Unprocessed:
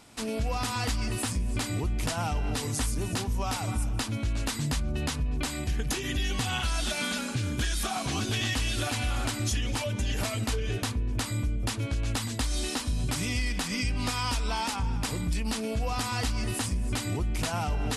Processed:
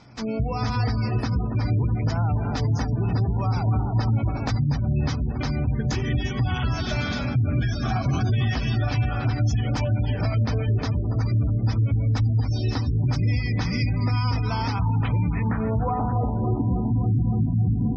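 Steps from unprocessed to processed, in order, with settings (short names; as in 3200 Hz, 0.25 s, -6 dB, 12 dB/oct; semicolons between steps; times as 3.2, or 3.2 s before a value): notch 2800 Hz, Q 9.8; low-pass sweep 5100 Hz -> 220 Hz, 14.71–16.91; graphic EQ 125/4000/8000 Hz +12/-9/-5 dB; darkening echo 0.283 s, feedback 80%, low-pass 3800 Hz, level -8 dB; spectral gate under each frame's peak -30 dB strong; notches 50/100/150/200/250/300/350/400/450 Hz; limiter -18 dBFS, peak gain reduction 7 dB; 3.68–4.51 dynamic EQ 770 Hz, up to +4 dB, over -45 dBFS, Q 0.82; gain +3 dB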